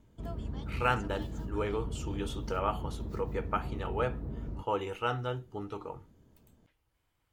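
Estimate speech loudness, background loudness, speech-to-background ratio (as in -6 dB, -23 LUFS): -35.5 LUFS, -40.0 LUFS, 4.5 dB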